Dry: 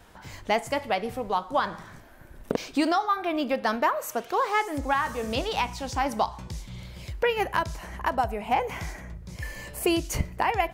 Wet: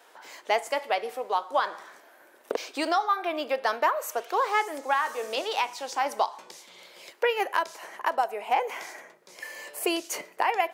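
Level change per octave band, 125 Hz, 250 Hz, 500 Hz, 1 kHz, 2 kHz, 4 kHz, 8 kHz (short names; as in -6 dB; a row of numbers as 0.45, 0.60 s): under -30 dB, -8.5 dB, -0.5 dB, 0.0 dB, 0.0 dB, 0.0 dB, 0.0 dB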